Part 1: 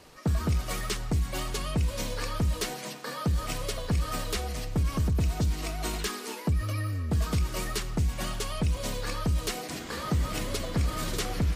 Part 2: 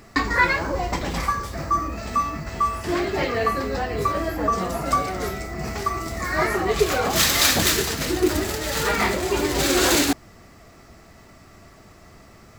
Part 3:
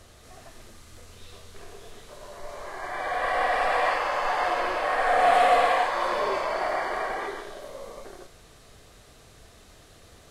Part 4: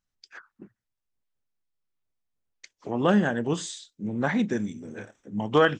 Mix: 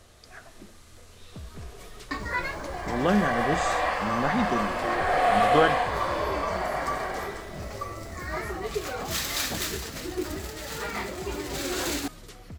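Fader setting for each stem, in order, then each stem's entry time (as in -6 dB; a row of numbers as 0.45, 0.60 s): -15.5, -11.0, -2.5, -2.0 dB; 1.10, 1.95, 0.00, 0.00 s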